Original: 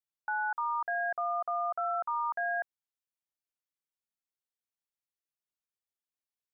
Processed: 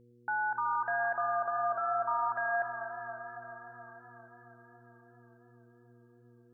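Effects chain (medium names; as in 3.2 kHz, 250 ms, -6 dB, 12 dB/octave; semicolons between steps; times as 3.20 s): mains buzz 120 Hz, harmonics 4, -61 dBFS -2 dB/octave; echo whose repeats swap between lows and highs 113 ms, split 800 Hz, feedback 85%, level -12 dB; modulated delay 276 ms, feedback 72%, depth 55 cents, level -13.5 dB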